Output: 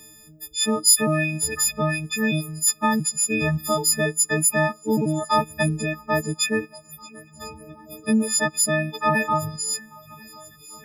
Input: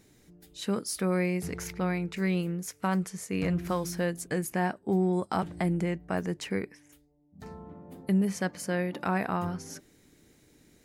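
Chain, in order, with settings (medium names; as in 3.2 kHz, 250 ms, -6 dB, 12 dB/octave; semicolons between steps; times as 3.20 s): partials quantised in pitch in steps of 6 st; shuffle delay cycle 1047 ms, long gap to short 1.5:1, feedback 63%, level -23 dB; reverb removal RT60 0.95 s; trim +6 dB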